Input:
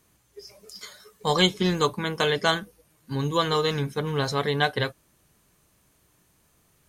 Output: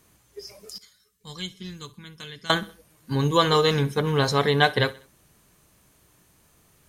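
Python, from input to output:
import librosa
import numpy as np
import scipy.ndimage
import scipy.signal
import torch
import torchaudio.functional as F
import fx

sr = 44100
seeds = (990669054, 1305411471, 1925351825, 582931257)

y = fx.tone_stack(x, sr, knobs='6-0-2', at=(0.78, 2.5))
y = fx.echo_feedback(y, sr, ms=64, feedback_pct=43, wet_db=-20)
y = F.gain(torch.from_numpy(y), 4.0).numpy()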